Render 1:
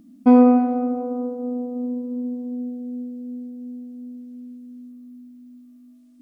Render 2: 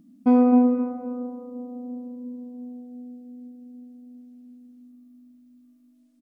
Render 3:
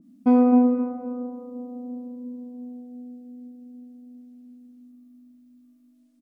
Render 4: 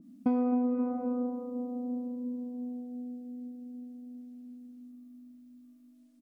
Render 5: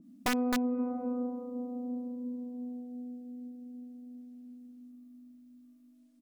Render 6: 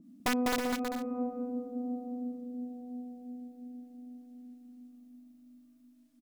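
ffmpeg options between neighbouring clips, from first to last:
ffmpeg -i in.wav -filter_complex "[0:a]equalizer=frequency=160:width_type=o:width=0.55:gain=7,asplit=2[link_01][link_02];[link_02]adelay=262,lowpass=frequency=910:poles=1,volume=-3.5dB,asplit=2[link_03][link_04];[link_04]adelay=262,lowpass=frequency=910:poles=1,volume=0.41,asplit=2[link_05][link_06];[link_06]adelay=262,lowpass=frequency=910:poles=1,volume=0.41,asplit=2[link_07][link_08];[link_08]adelay=262,lowpass=frequency=910:poles=1,volume=0.41,asplit=2[link_09][link_10];[link_10]adelay=262,lowpass=frequency=910:poles=1,volume=0.41[link_11];[link_01][link_03][link_05][link_07][link_09][link_11]amix=inputs=6:normalize=0,volume=-6dB" out.wav
ffmpeg -i in.wav -af "adynamicequalizer=threshold=0.00631:dfrequency=2000:dqfactor=0.7:tfrequency=2000:tqfactor=0.7:attack=5:release=100:ratio=0.375:range=1.5:mode=cutabove:tftype=highshelf" out.wav
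ffmpeg -i in.wav -af "acompressor=threshold=-25dB:ratio=8" out.wav
ffmpeg -i in.wav -af "aeval=exprs='(mod(11.2*val(0)+1,2)-1)/11.2':channel_layout=same,volume=-2dB" out.wav
ffmpeg -i in.wav -af "aecho=1:1:200|320|392|435.2|461.1:0.631|0.398|0.251|0.158|0.1" out.wav

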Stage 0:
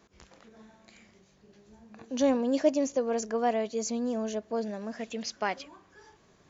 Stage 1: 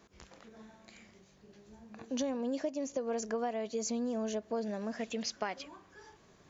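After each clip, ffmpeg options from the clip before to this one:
ffmpeg -i in.wav -af "acompressor=threshold=-31dB:ratio=12" out.wav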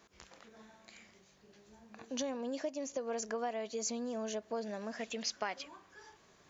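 ffmpeg -i in.wav -af "lowshelf=frequency=480:gain=-8,volume=1dB" out.wav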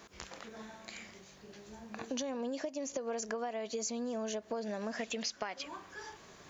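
ffmpeg -i in.wav -af "acompressor=threshold=-44dB:ratio=6,volume=9dB" out.wav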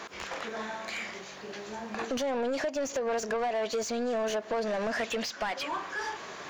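ffmpeg -i in.wav -filter_complex "[0:a]asplit=2[link_01][link_02];[link_02]highpass=frequency=720:poles=1,volume=24dB,asoftclip=type=tanh:threshold=-21.5dB[link_03];[link_01][link_03]amix=inputs=2:normalize=0,lowpass=frequency=2300:poles=1,volume=-6dB" out.wav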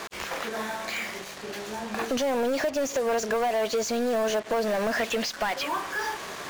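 ffmpeg -i in.wav -af "acrusher=bits=6:mix=0:aa=0.5,volume=4.5dB" out.wav

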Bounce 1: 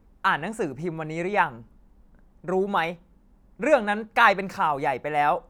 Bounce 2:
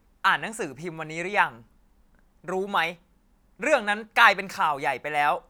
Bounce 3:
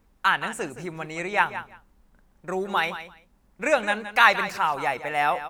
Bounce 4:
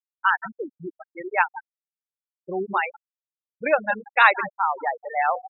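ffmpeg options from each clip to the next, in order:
ffmpeg -i in.wav -af "tiltshelf=frequency=1100:gain=-6" out.wav
ffmpeg -i in.wav -af "aecho=1:1:169|338:0.237|0.0379" out.wav
ffmpeg -i in.wav -af "adynamicsmooth=sensitivity=3:basefreq=1300,afftfilt=real='re*gte(hypot(re,im),0.141)':imag='im*gte(hypot(re,im),0.141)':win_size=1024:overlap=0.75,volume=1.5dB" out.wav

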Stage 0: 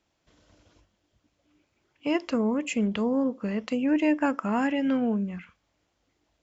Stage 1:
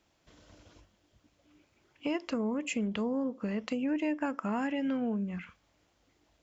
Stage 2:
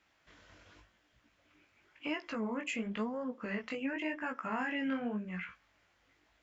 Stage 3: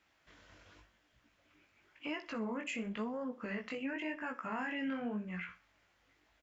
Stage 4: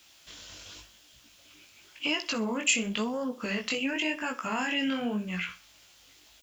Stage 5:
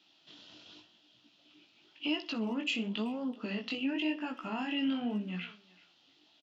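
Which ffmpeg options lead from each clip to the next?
ffmpeg -i in.wav -af "acompressor=threshold=-37dB:ratio=2.5,volume=3dB" out.wav
ffmpeg -i in.wav -af "equalizer=frequency=1800:width=0.74:gain=12.5,alimiter=limit=-21dB:level=0:latency=1:release=16,flanger=delay=16:depth=6.6:speed=0.92,volume=-3dB" out.wav
ffmpeg -i in.wav -filter_complex "[0:a]asplit=2[link_01][link_02];[link_02]alimiter=level_in=8dB:limit=-24dB:level=0:latency=1:release=32,volume=-8dB,volume=0dB[link_03];[link_01][link_03]amix=inputs=2:normalize=0,aecho=1:1:62|124|186:0.141|0.0424|0.0127,volume=-7dB" out.wav
ffmpeg -i in.wav -af "aexciter=amount=6.5:drive=3.1:freq=2800,volume=7.5dB" out.wav
ffmpeg -i in.wav -filter_complex "[0:a]highpass=frequency=140:width=0.5412,highpass=frequency=140:width=1.3066,equalizer=frequency=310:width_type=q:width=4:gain=5,equalizer=frequency=510:width_type=q:width=4:gain=-8,equalizer=frequency=1100:width_type=q:width=4:gain=-7,equalizer=frequency=1600:width_type=q:width=4:gain=-8,equalizer=frequency=2200:width_type=q:width=4:gain=-10,lowpass=frequency=4000:width=0.5412,lowpass=frequency=4000:width=1.3066,asplit=2[link_01][link_02];[link_02]adelay=380,highpass=300,lowpass=3400,asoftclip=type=hard:threshold=-27.5dB,volume=-20dB[link_03];[link_01][link_03]amix=inputs=2:normalize=0,volume=-3dB" out.wav

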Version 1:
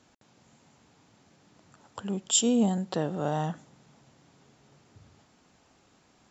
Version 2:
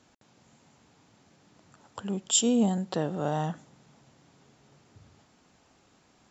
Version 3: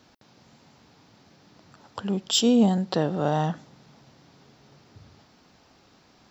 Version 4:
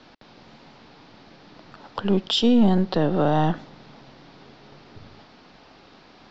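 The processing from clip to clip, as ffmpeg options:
ffmpeg -i in.wav -af anull out.wav
ffmpeg -i in.wav -af "aexciter=amount=1.1:drive=4.4:freq=4000,volume=5dB" out.wav
ffmpeg -i in.wav -filter_complex "[0:a]lowpass=frequency=4600:width=0.5412,lowpass=frequency=4600:width=1.3066,acrossover=split=210[link_01][link_02];[link_01]aeval=exprs='max(val(0),0)':channel_layout=same[link_03];[link_02]alimiter=limit=-21dB:level=0:latency=1:release=208[link_04];[link_03][link_04]amix=inputs=2:normalize=0,volume=8.5dB" out.wav

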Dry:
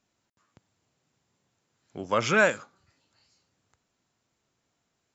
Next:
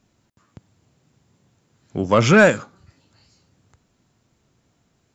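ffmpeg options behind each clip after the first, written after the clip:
ffmpeg -i in.wav -af "lowshelf=frequency=340:gain=11.5,acontrast=89" out.wav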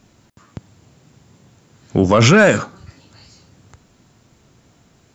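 ffmpeg -i in.wav -af "alimiter=level_in=13.5dB:limit=-1dB:release=50:level=0:latency=1,volume=-2dB" out.wav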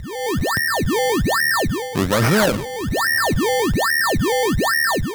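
ffmpeg -i in.wav -af "aeval=exprs='val(0)+0.0891*sin(2*PI*1800*n/s)':channel_layout=same,dynaudnorm=framelen=100:gausssize=5:maxgain=13dB,acrusher=samples=23:mix=1:aa=0.000001:lfo=1:lforange=23:lforate=1.2,volume=-7dB" out.wav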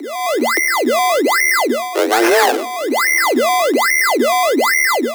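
ffmpeg -i in.wav -filter_complex "[0:a]afreqshift=230,asplit=2[link_01][link_02];[link_02]asoftclip=type=tanh:threshold=-14.5dB,volume=-9.5dB[link_03];[link_01][link_03]amix=inputs=2:normalize=0,volume=2dB" out.wav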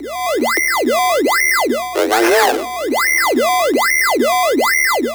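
ffmpeg -i in.wav -af "aeval=exprs='val(0)+0.00447*(sin(2*PI*60*n/s)+sin(2*PI*2*60*n/s)/2+sin(2*PI*3*60*n/s)/3+sin(2*PI*4*60*n/s)/4+sin(2*PI*5*60*n/s)/5)':channel_layout=same" out.wav

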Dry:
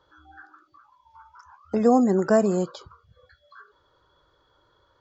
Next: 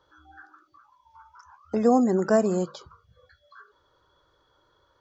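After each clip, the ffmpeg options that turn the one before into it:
ffmpeg -i in.wav -af "equalizer=frequency=5900:width_type=o:width=0.2:gain=5,bandreject=frequency=50:width_type=h:width=6,bandreject=frequency=100:width_type=h:width=6,bandreject=frequency=150:width_type=h:width=6,bandreject=frequency=200:width_type=h:width=6,volume=-1.5dB" out.wav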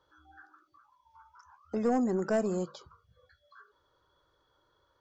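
ffmpeg -i in.wav -af "asoftclip=type=tanh:threshold=-13.5dB,volume=-6dB" out.wav

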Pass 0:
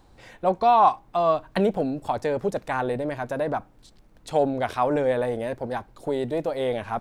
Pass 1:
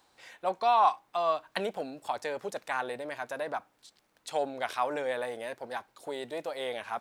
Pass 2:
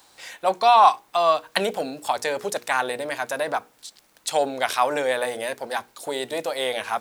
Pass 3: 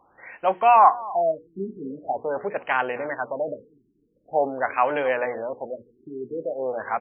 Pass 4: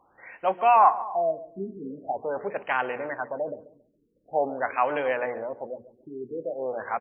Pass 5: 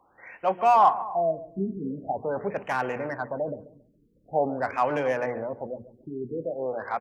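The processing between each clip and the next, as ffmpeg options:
ffmpeg -i in.wav -af "highpass=frequency=1500:poles=1" out.wav
ffmpeg -i in.wav -af "highshelf=frequency=4000:gain=9.5,bandreject=frequency=60:width_type=h:width=6,bandreject=frequency=120:width_type=h:width=6,bandreject=frequency=180:width_type=h:width=6,bandreject=frequency=240:width_type=h:width=6,bandreject=frequency=300:width_type=h:width=6,bandreject=frequency=360:width_type=h:width=6,bandreject=frequency=420:width_type=h:width=6,bandreject=frequency=480:width_type=h:width=6,volume=8.5dB" out.wav
ffmpeg -i in.wav -af "aecho=1:1:255|510:0.112|0.0325,afftfilt=real='re*lt(b*sr/1024,410*pow(3300/410,0.5+0.5*sin(2*PI*0.45*pts/sr)))':imag='im*lt(b*sr/1024,410*pow(3300/410,0.5+0.5*sin(2*PI*0.45*pts/sr)))':win_size=1024:overlap=0.75" out.wav
ffmpeg -i in.wav -filter_complex "[0:a]asplit=2[link_01][link_02];[link_02]adelay=138,lowpass=frequency=1700:poles=1,volume=-16dB,asplit=2[link_03][link_04];[link_04]adelay=138,lowpass=frequency=1700:poles=1,volume=0.26,asplit=2[link_05][link_06];[link_06]adelay=138,lowpass=frequency=1700:poles=1,volume=0.26[link_07];[link_01][link_03][link_05][link_07]amix=inputs=4:normalize=0,volume=-3dB" out.wav
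ffmpeg -i in.wav -filter_complex "[0:a]acrossover=split=210|1300[link_01][link_02][link_03];[link_01]dynaudnorm=framelen=100:gausssize=11:maxgain=11.5dB[link_04];[link_03]asoftclip=type=tanh:threshold=-31.5dB[link_05];[link_04][link_02][link_05]amix=inputs=3:normalize=0" out.wav

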